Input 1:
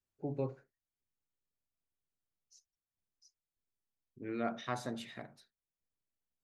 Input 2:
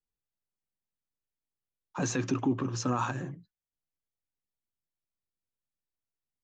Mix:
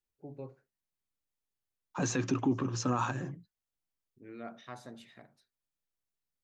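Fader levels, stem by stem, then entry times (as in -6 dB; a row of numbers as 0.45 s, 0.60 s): -8.0 dB, -1.0 dB; 0.00 s, 0.00 s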